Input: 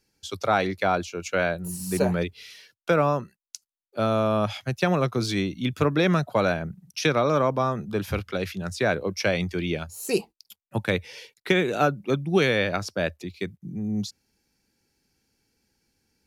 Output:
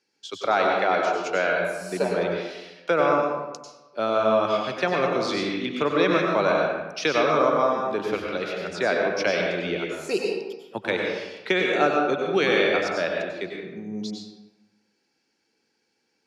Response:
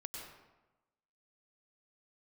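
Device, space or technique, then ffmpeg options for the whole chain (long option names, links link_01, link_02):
supermarket ceiling speaker: -filter_complex "[0:a]highpass=310,lowpass=5400[link_01];[1:a]atrim=start_sample=2205[link_02];[link_01][link_02]afir=irnorm=-1:irlink=0,volume=5.5dB"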